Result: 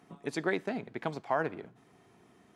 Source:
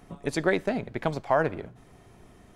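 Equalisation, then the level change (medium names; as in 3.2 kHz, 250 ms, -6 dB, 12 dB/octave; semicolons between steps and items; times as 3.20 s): high-pass 170 Hz 12 dB/octave; peaking EQ 570 Hz -6 dB 0.32 oct; treble shelf 8.4 kHz -6.5 dB; -5.0 dB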